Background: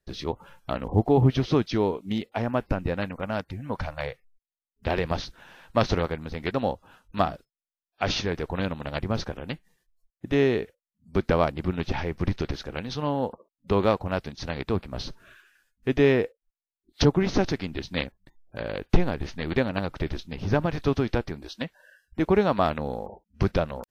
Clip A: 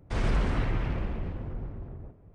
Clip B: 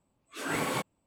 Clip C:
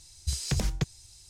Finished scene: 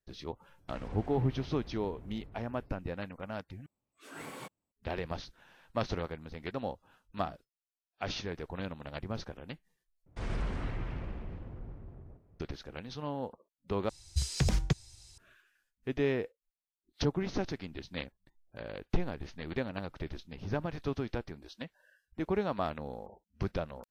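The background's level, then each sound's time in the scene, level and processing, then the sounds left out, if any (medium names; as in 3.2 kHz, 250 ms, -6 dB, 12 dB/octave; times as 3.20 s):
background -10.5 dB
0.58 s: add A -12.5 dB + compression 3:1, threshold -30 dBFS
3.66 s: replace with B -14 dB
10.06 s: replace with A -8.5 dB
13.89 s: replace with C + treble shelf 6.7 kHz -8.5 dB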